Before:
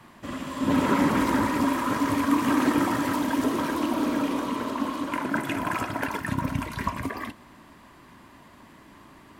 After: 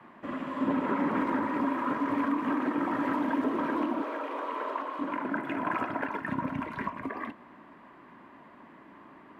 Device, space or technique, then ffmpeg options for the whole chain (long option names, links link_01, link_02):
DJ mixer with the lows and highs turned down: -filter_complex "[0:a]acrossover=split=170 2500:gain=0.141 1 0.0708[link_01][link_02][link_03];[link_01][link_02][link_03]amix=inputs=3:normalize=0,alimiter=limit=-19dB:level=0:latency=1:release=468,asettb=1/sr,asplit=3[link_04][link_05][link_06];[link_04]atrim=end=4.024[link_07];[link_05]atrim=start=4.02:end=4.99,asetpts=PTS-STARTPTS,afade=type=in:duration=0.004:curve=qsin,afade=type=out:start_time=0.966:duration=0.004:curve=qsin,highpass=frequency=410:width=0.5412,highpass=frequency=410:width=1.3066[link_08];[link_06]atrim=start=4.986[link_09];[link_07][link_08]acrossfade=duration=0.004:curve1=hsin:curve2=qsin[link_10];[link_10][link_09]acrossfade=duration=0.004:curve1=qsin:curve2=hsin"